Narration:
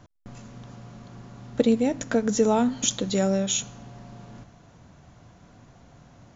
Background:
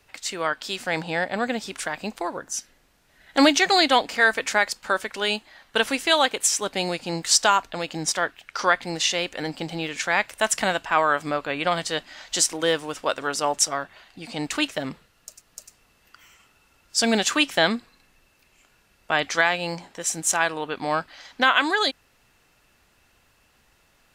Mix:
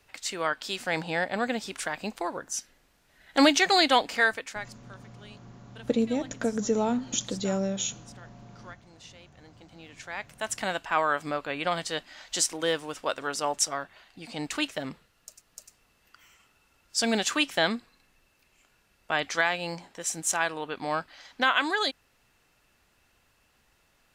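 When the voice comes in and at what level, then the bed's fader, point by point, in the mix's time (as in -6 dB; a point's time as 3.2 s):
4.30 s, -5.0 dB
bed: 4.19 s -3 dB
4.91 s -27 dB
9.33 s -27 dB
10.82 s -5 dB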